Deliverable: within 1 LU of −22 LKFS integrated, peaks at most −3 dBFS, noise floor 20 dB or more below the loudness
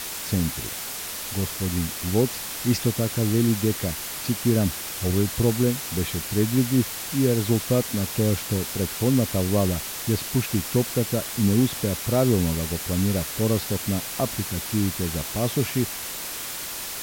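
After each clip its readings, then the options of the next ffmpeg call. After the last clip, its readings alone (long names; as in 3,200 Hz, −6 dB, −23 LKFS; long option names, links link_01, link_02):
background noise floor −33 dBFS; target noise floor −45 dBFS; integrated loudness −24.5 LKFS; sample peak −9.0 dBFS; target loudness −22.0 LKFS
→ -af "afftdn=noise_reduction=12:noise_floor=-33"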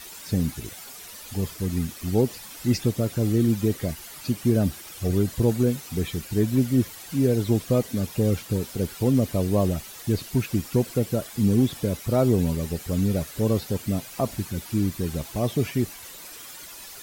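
background noise floor −42 dBFS; target noise floor −45 dBFS
→ -af "afftdn=noise_reduction=6:noise_floor=-42"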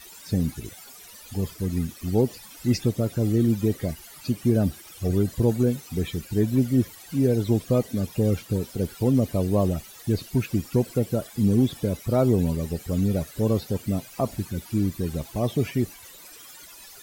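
background noise floor −46 dBFS; integrated loudness −25.5 LKFS; sample peak −10.0 dBFS; target loudness −22.0 LKFS
→ -af "volume=3.5dB"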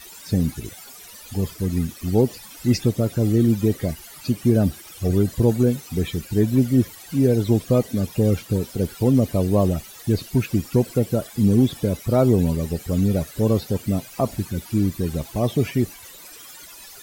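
integrated loudness −22.0 LKFS; sample peak −6.5 dBFS; background noise floor −43 dBFS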